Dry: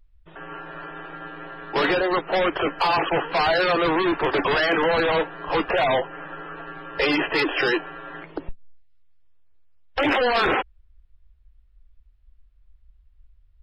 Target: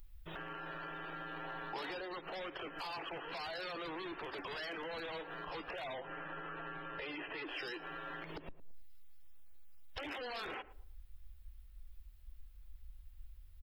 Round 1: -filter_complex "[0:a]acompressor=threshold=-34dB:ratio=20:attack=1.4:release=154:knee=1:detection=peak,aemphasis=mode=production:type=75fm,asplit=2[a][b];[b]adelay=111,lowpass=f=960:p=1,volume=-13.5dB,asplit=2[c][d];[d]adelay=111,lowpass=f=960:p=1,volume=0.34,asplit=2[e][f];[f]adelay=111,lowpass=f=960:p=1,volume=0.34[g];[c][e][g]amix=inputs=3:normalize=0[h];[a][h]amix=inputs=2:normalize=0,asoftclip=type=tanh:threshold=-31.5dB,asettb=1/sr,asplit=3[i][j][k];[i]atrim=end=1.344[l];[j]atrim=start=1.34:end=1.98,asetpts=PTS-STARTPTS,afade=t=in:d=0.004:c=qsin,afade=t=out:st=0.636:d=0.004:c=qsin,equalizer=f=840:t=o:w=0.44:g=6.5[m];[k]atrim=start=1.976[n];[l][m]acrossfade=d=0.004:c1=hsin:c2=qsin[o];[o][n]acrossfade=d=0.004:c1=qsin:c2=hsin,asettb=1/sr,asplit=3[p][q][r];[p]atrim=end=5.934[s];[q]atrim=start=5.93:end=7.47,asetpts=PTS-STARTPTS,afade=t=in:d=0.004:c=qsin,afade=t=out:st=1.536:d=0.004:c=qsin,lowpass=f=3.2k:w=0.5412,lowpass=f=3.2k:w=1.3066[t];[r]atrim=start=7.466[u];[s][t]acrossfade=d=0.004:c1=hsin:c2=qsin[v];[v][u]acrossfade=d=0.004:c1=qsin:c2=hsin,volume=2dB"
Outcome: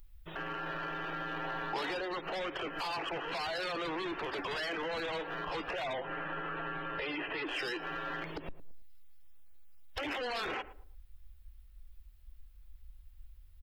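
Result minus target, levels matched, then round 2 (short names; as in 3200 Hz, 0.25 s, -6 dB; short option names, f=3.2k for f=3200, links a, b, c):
compressor: peak gain reduction -7.5 dB
-filter_complex "[0:a]acompressor=threshold=-42dB:ratio=20:attack=1.4:release=154:knee=1:detection=peak,aemphasis=mode=production:type=75fm,asplit=2[a][b];[b]adelay=111,lowpass=f=960:p=1,volume=-13.5dB,asplit=2[c][d];[d]adelay=111,lowpass=f=960:p=1,volume=0.34,asplit=2[e][f];[f]adelay=111,lowpass=f=960:p=1,volume=0.34[g];[c][e][g]amix=inputs=3:normalize=0[h];[a][h]amix=inputs=2:normalize=0,asoftclip=type=tanh:threshold=-31.5dB,asettb=1/sr,asplit=3[i][j][k];[i]atrim=end=1.344[l];[j]atrim=start=1.34:end=1.98,asetpts=PTS-STARTPTS,afade=t=in:d=0.004:c=qsin,afade=t=out:st=0.636:d=0.004:c=qsin,equalizer=f=840:t=o:w=0.44:g=6.5[m];[k]atrim=start=1.976[n];[l][m]acrossfade=d=0.004:c1=hsin:c2=qsin[o];[o][n]acrossfade=d=0.004:c1=qsin:c2=hsin,asettb=1/sr,asplit=3[p][q][r];[p]atrim=end=5.934[s];[q]atrim=start=5.93:end=7.47,asetpts=PTS-STARTPTS,afade=t=in:d=0.004:c=qsin,afade=t=out:st=1.536:d=0.004:c=qsin,lowpass=f=3.2k:w=0.5412,lowpass=f=3.2k:w=1.3066[t];[r]atrim=start=7.466[u];[s][t]acrossfade=d=0.004:c1=hsin:c2=qsin[v];[v][u]acrossfade=d=0.004:c1=qsin:c2=hsin,volume=2dB"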